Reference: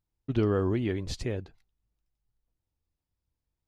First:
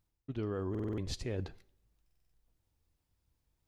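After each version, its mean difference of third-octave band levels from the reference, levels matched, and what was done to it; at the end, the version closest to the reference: 4.5 dB: reverse; compression 6:1, threshold -41 dBFS, peak gain reduction 18.5 dB; reverse; plate-style reverb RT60 0.68 s, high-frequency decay 0.9×, DRR 18.5 dB; buffer glitch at 0.70/2.06 s, samples 2048, times 5; trim +6 dB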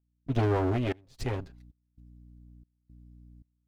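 7.0 dB: comb filter that takes the minimum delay 7.5 ms; hum 60 Hz, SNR 19 dB; trance gate "..xxxxx..xxxx" 114 bpm -24 dB; trim +1.5 dB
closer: first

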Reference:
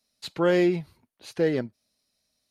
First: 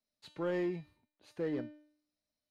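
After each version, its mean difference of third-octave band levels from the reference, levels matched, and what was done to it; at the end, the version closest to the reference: 2.5 dB: treble shelf 2.8 kHz -9.5 dB; feedback comb 300 Hz, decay 0.57 s, mix 80%; in parallel at -7 dB: hard clipper -34 dBFS, distortion -11 dB; on the sum: trim -2 dB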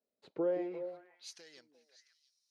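8.5 dB: compression, threshold -26 dBFS, peak gain reduction 8.5 dB; band-pass sweep 440 Hz -> 5.8 kHz, 0.44–1.29 s; on a send: repeats whose band climbs or falls 174 ms, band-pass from 250 Hz, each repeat 1.4 oct, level -5 dB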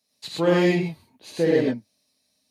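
6.0 dB: high-pass 94 Hz; peaking EQ 1.4 kHz -7 dB 0.26 oct; gated-style reverb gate 140 ms rising, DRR -3.5 dB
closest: first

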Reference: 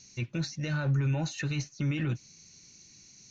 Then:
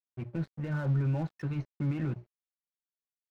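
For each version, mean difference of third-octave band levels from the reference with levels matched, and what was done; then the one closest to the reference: 6.0 dB: low-pass 1.3 kHz 12 dB/octave; hum notches 60/120/180 Hz; level-controlled noise filter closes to 840 Hz, open at -24 dBFS; crossover distortion -47 dBFS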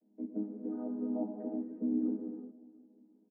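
13.5 dB: vocoder on a held chord minor triad, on G#3; elliptic band-pass 220–790 Hz, stop band 80 dB; feedback delay 357 ms, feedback 49%, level -20 dB; gated-style reverb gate 400 ms flat, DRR 1 dB; trim -6 dB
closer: first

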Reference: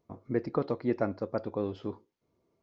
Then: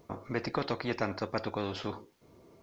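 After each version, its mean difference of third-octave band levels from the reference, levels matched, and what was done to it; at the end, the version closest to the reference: 8.5 dB: spectrum-flattening compressor 2:1; trim -1 dB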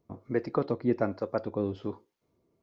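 1.0 dB: harmonic tremolo 1.2 Hz, depth 50%, crossover 420 Hz; trim +4 dB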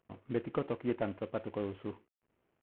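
3.0 dB: CVSD coder 16 kbps; trim -4 dB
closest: second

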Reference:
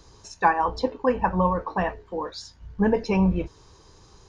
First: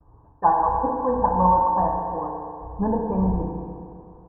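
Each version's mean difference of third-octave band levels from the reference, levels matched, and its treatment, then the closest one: 8.0 dB: elliptic low-pass 1.2 kHz, stop band 70 dB; expander -50 dBFS; comb 1.2 ms, depth 47%; FDN reverb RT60 2.5 s, low-frequency decay 0.8×, high-frequency decay 0.8×, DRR -1 dB; trim -1.5 dB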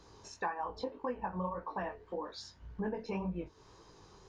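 4.5 dB: bass shelf 110 Hz -10 dB; chorus 1.8 Hz, delay 16.5 ms, depth 6.3 ms; treble shelf 4.4 kHz -9.5 dB; compression 3:1, threshold -39 dBFS, peak gain reduction 16 dB; trim +1 dB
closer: second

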